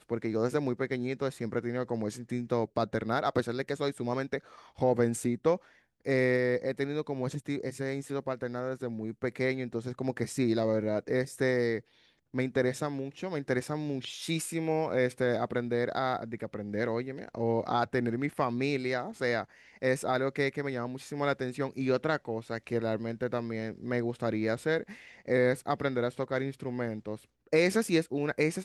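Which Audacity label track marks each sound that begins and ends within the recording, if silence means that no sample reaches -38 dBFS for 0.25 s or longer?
4.790000	5.570000	sound
6.060000	11.800000	sound
12.340000	19.440000	sound
19.820000	24.930000	sound
25.280000	27.160000	sound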